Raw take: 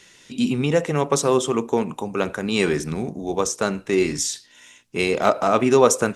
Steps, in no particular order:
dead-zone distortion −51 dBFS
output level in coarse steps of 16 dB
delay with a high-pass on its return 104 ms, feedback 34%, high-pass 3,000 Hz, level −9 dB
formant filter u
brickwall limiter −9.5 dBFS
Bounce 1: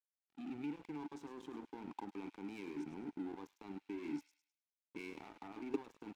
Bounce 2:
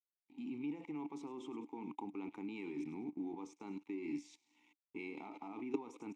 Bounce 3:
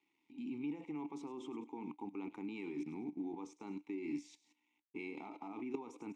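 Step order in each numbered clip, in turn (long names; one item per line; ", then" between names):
brickwall limiter, then output level in coarse steps, then formant filter, then dead-zone distortion, then delay with a high-pass on its return
delay with a high-pass on its return, then brickwall limiter, then output level in coarse steps, then dead-zone distortion, then formant filter
brickwall limiter, then delay with a high-pass on its return, then dead-zone distortion, then output level in coarse steps, then formant filter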